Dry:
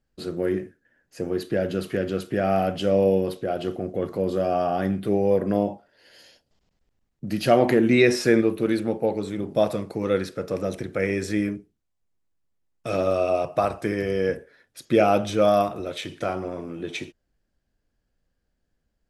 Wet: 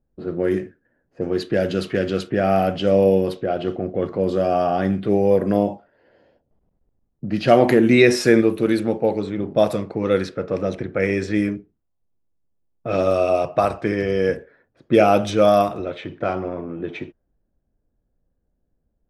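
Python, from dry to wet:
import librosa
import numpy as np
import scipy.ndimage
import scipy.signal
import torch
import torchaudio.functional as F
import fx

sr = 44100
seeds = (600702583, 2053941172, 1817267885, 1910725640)

y = fx.env_lowpass(x, sr, base_hz=730.0, full_db=-18.0)
y = fx.high_shelf(y, sr, hz=fx.line((0.5, 4800.0), (2.28, 3400.0)), db=9.0, at=(0.5, 2.28), fade=0.02)
y = y * librosa.db_to_amplitude(4.0)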